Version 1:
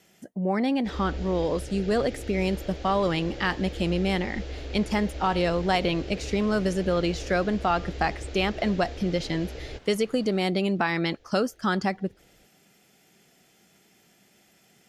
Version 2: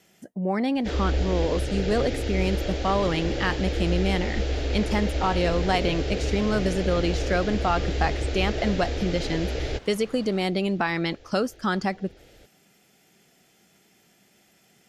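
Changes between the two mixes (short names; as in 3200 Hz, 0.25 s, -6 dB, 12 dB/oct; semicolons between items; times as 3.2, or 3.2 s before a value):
first sound +9.5 dB; second sound +5.5 dB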